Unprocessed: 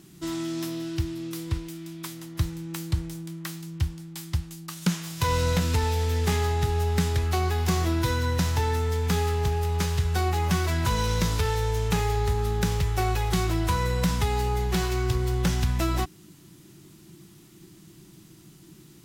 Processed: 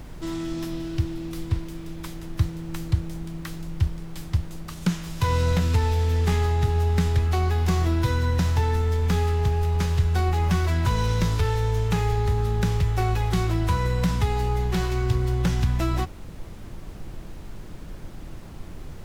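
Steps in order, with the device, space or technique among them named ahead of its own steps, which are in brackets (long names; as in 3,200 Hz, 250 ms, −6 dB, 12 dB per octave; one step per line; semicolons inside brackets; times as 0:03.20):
car interior (parametric band 100 Hz +5 dB 0.97 octaves; high-shelf EQ 4,900 Hz −7 dB; brown noise bed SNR 12 dB)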